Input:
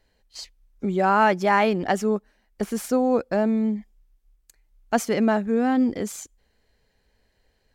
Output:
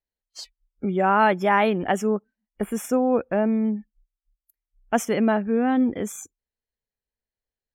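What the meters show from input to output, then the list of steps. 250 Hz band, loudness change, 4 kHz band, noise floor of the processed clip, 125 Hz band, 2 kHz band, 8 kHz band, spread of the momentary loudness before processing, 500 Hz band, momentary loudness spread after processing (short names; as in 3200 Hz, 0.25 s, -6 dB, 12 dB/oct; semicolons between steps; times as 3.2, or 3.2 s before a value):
0.0 dB, 0.0 dB, -1.5 dB, under -85 dBFS, 0.0 dB, 0.0 dB, -0.5 dB, 14 LU, 0.0 dB, 14 LU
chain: spectral noise reduction 27 dB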